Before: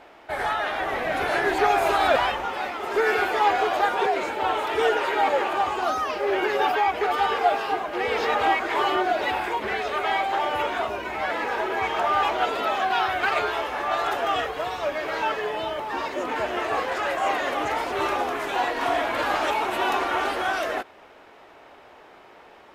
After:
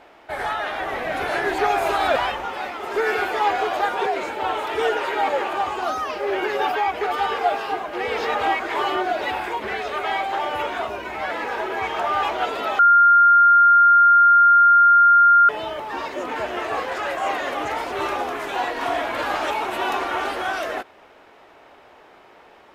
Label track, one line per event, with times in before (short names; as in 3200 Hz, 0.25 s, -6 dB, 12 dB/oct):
12.790000	15.490000	bleep 1400 Hz -9.5 dBFS